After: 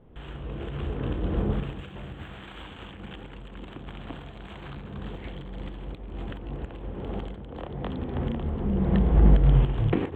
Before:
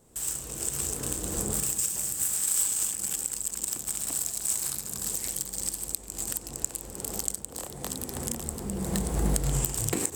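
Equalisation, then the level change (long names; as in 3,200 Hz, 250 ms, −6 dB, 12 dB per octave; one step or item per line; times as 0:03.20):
elliptic low-pass filter 3,300 Hz, stop band 40 dB
spectral tilt −2 dB per octave
+3.5 dB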